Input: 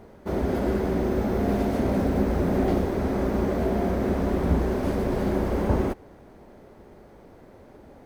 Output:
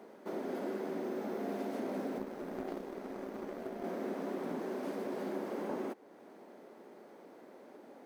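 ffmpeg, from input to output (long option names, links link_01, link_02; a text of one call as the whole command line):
ffmpeg -i in.wav -filter_complex "[0:a]highpass=frequency=230:width=0.5412,highpass=frequency=230:width=1.3066,acompressor=threshold=-46dB:ratio=1.5,asettb=1/sr,asplit=3[link_01][link_02][link_03];[link_01]atrim=end=2.184[link_04];[link_02]atrim=start=2.18:end=3.84,asetpts=PTS-STARTPTS,afade=type=in:duration=0.004:curve=qsin,afade=type=out:start_time=1.656:duration=0.004:curve=qsin,aeval=exprs='0.0794*(cos(1*acos(clip(val(0)/0.0794,-1,1)))-cos(1*PI/2))+0.0141*(cos(3*acos(clip(val(0)/0.0794,-1,1)))-cos(3*PI/2))+0.000562*(cos(6*acos(clip(val(0)/0.0794,-1,1)))-cos(6*PI/2))':channel_layout=same[link_05];[link_03]atrim=start=3.836[link_06];[link_04][link_05]acrossfade=duration=0.004:curve1=hsin:curve2=qsin[link_07];[link_07][link_06]acrossfade=duration=0.004:curve1=qsin:curve2=hsin,volume=-3.5dB" out.wav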